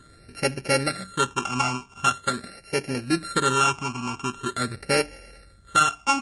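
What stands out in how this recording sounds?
a buzz of ramps at a fixed pitch in blocks of 32 samples; phasing stages 8, 0.44 Hz, lowest notch 520–1100 Hz; a quantiser's noise floor 12-bit, dither none; MP3

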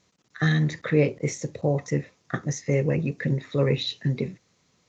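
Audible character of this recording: noise floor -67 dBFS; spectral tilt -6.0 dB/octave

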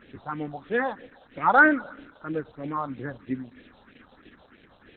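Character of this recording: a quantiser's noise floor 8-bit, dither triangular; phasing stages 4, 3.1 Hz, lowest notch 320–1100 Hz; Opus

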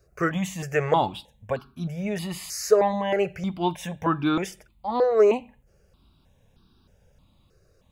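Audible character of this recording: notches that jump at a steady rate 3.2 Hz 910–2000 Hz

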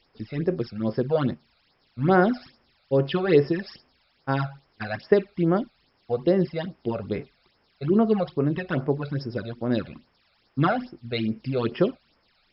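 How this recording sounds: a quantiser's noise floor 10-bit, dither triangular; phasing stages 12, 2.4 Hz, lowest notch 300–4000 Hz; MP3

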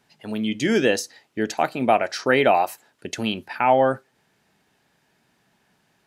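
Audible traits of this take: noise floor -67 dBFS; spectral tilt -3.0 dB/octave

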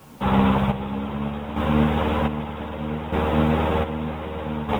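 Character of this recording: a quantiser's noise floor 10-bit, dither triangular; chopped level 0.64 Hz, depth 65%, duty 45%; a shimmering, thickened sound

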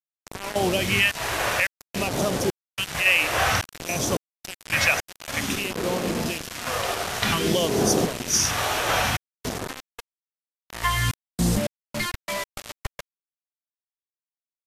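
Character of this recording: random-step tremolo 3.6 Hz, depth 95%; phasing stages 2, 0.54 Hz, lowest notch 210–2300 Hz; a quantiser's noise floor 6-bit, dither none; MP2

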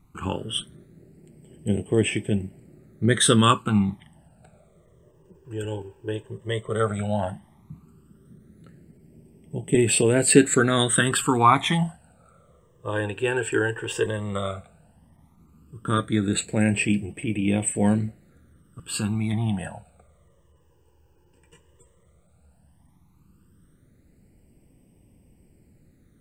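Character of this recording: phasing stages 12, 0.13 Hz, lowest notch 210–1300 Hz

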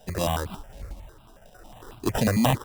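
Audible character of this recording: aliases and images of a low sample rate 2.2 kHz, jitter 0%; notches that jump at a steady rate 11 Hz 330–1800 Hz

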